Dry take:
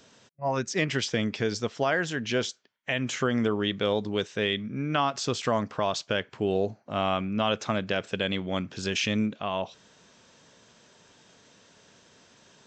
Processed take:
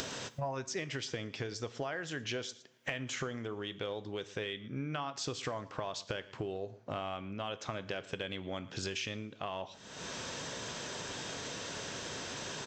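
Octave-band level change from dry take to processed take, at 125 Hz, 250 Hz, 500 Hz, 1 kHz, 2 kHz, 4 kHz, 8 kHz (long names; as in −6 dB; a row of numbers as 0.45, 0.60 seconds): −9.0, −13.0, −11.0, −10.5, −9.0, −8.0, −3.5 decibels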